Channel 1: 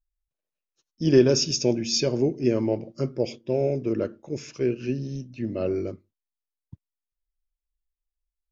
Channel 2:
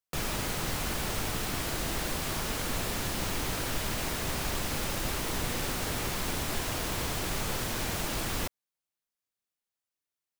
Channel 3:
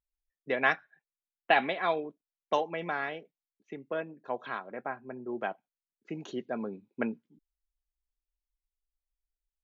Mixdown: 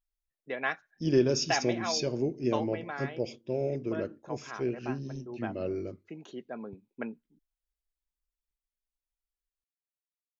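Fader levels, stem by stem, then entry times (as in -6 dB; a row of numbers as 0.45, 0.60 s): -7.0 dB, off, -5.5 dB; 0.00 s, off, 0.00 s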